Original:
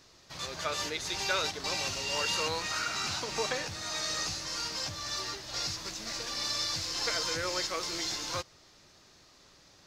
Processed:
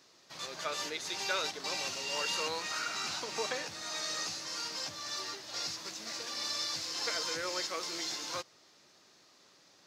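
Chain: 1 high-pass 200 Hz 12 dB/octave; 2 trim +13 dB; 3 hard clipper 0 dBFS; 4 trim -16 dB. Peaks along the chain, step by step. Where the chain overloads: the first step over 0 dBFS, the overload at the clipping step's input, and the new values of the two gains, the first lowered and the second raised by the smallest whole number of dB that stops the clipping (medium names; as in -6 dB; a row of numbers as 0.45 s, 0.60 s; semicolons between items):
-17.5 dBFS, -4.5 dBFS, -4.5 dBFS, -20.5 dBFS; nothing clips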